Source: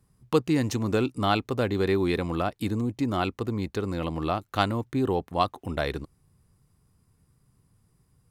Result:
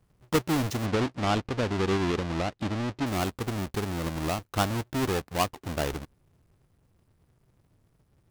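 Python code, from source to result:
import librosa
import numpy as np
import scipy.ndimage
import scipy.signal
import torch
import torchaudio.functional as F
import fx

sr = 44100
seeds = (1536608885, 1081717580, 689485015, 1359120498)

y = fx.halfwave_hold(x, sr)
y = fx.lowpass(y, sr, hz=5200.0, slope=12, at=(0.85, 3.05), fade=0.02)
y = F.gain(torch.from_numpy(y), -6.0).numpy()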